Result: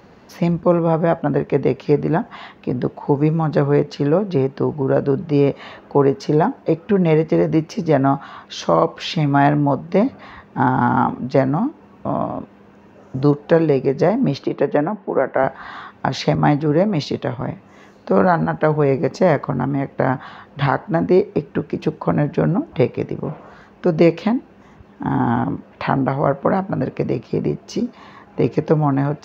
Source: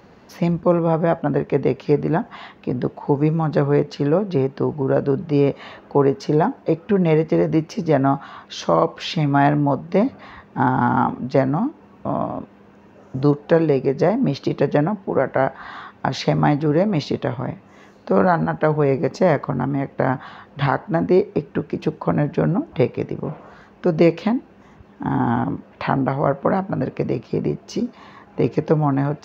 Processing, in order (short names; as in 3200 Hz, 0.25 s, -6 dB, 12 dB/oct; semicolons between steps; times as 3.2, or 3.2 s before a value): 14.43–15.44 three-band isolator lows -13 dB, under 200 Hz, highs -13 dB, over 2800 Hz; 16.35–17.41 three-band expander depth 40%; gain +1.5 dB